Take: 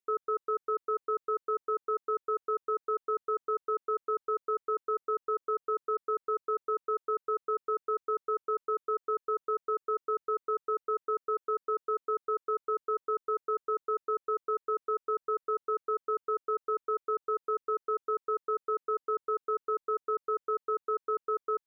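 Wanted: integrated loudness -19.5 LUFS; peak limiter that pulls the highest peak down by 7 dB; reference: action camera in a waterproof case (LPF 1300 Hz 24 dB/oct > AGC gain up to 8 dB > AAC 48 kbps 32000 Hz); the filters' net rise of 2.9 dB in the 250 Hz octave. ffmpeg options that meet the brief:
-af "equalizer=f=250:t=o:g=6.5,alimiter=level_in=4.5dB:limit=-24dB:level=0:latency=1,volume=-4.5dB,lowpass=f=1.3k:w=0.5412,lowpass=f=1.3k:w=1.3066,dynaudnorm=m=8dB,volume=15.5dB" -ar 32000 -c:a aac -b:a 48k

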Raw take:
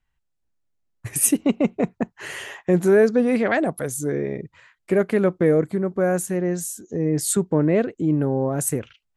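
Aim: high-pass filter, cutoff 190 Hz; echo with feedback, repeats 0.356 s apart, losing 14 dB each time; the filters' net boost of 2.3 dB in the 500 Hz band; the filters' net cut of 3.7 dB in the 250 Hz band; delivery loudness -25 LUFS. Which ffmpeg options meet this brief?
-af "highpass=190,equalizer=f=250:t=o:g=-5,equalizer=f=500:t=o:g=4.5,aecho=1:1:356|712:0.2|0.0399,volume=-3.5dB"

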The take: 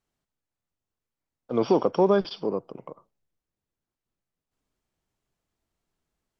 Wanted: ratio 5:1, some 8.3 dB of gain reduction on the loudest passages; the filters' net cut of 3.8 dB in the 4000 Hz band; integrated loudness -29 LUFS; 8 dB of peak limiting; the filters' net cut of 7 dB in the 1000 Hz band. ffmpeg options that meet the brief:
-af "equalizer=f=1k:t=o:g=-9,equalizer=f=4k:t=o:g=-4.5,acompressor=threshold=-26dB:ratio=5,volume=7dB,alimiter=limit=-16.5dB:level=0:latency=1"

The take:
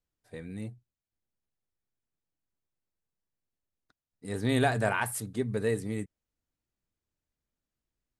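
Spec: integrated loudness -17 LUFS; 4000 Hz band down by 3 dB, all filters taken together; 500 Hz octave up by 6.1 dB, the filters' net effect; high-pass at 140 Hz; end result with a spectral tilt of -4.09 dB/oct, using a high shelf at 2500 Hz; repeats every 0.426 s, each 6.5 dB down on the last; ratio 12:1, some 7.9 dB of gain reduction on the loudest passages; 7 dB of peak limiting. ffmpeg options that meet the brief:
-af "highpass=140,equalizer=f=500:t=o:g=7.5,highshelf=f=2.5k:g=3.5,equalizer=f=4k:t=o:g=-6.5,acompressor=threshold=-25dB:ratio=12,alimiter=limit=-23.5dB:level=0:latency=1,aecho=1:1:426|852|1278|1704|2130|2556:0.473|0.222|0.105|0.0491|0.0231|0.0109,volume=19dB"

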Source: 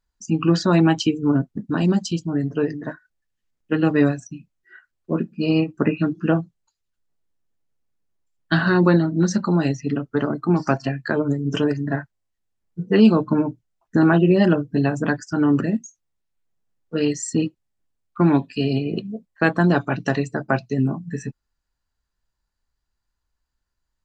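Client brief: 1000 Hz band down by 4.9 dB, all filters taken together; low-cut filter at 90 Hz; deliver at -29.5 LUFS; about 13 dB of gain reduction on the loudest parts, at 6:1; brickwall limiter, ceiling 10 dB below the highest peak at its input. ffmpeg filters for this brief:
-af "highpass=90,equalizer=f=1k:t=o:g=-7,acompressor=threshold=-23dB:ratio=6,volume=1dB,alimiter=limit=-18.5dB:level=0:latency=1"

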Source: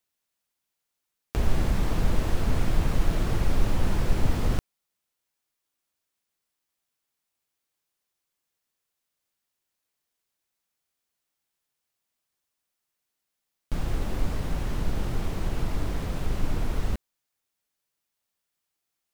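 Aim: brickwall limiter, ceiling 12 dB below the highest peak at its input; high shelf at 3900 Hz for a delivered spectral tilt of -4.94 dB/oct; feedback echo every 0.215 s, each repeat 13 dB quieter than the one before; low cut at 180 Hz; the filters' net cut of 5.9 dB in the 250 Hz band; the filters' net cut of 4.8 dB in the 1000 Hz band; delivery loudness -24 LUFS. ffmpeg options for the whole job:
-af "highpass=180,equalizer=f=250:t=o:g=-5.5,equalizer=f=1k:t=o:g=-5.5,highshelf=f=3.9k:g=-7.5,alimiter=level_in=7dB:limit=-24dB:level=0:latency=1,volume=-7dB,aecho=1:1:215|430|645:0.224|0.0493|0.0108,volume=17dB"

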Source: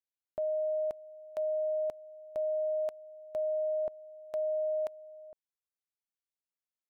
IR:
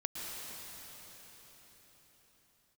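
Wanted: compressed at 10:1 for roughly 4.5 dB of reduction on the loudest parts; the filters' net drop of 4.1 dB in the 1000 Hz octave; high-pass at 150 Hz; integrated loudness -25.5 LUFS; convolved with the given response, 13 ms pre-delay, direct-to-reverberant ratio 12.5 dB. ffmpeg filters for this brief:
-filter_complex "[0:a]highpass=150,equalizer=f=1k:t=o:g=-8.5,acompressor=threshold=-37dB:ratio=10,asplit=2[a][b];[1:a]atrim=start_sample=2205,adelay=13[c];[b][c]afir=irnorm=-1:irlink=0,volume=-15dB[d];[a][d]amix=inputs=2:normalize=0,volume=15dB"

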